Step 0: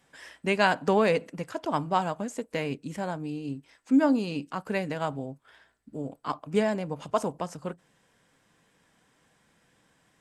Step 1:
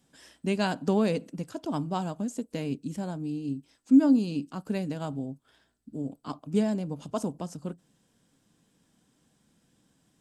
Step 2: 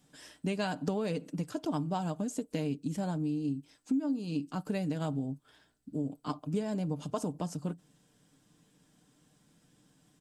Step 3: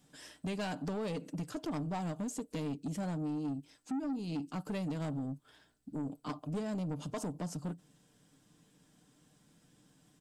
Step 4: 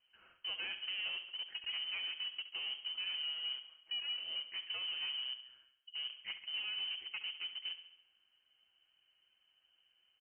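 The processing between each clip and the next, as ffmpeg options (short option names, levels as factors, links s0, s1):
-af "equalizer=f=250:t=o:w=1:g=5,equalizer=f=500:t=o:w=1:g=-5,equalizer=f=1000:t=o:w=1:g=-6,equalizer=f=2000:t=o:w=1:g=-11"
-af "aecho=1:1:6.7:0.39,acompressor=threshold=0.0316:ratio=6,volume=1.12"
-af "asoftclip=type=tanh:threshold=0.0251"
-filter_complex "[0:a]asplit=2[s0][s1];[s1]acrusher=bits=5:mix=0:aa=0.000001,volume=0.398[s2];[s0][s2]amix=inputs=2:normalize=0,aecho=1:1:69|138|207|276|345|414|483:0.251|0.148|0.0874|0.0516|0.0304|0.018|0.0106,lowpass=f=2700:t=q:w=0.5098,lowpass=f=2700:t=q:w=0.6013,lowpass=f=2700:t=q:w=0.9,lowpass=f=2700:t=q:w=2.563,afreqshift=-3200,volume=0.398"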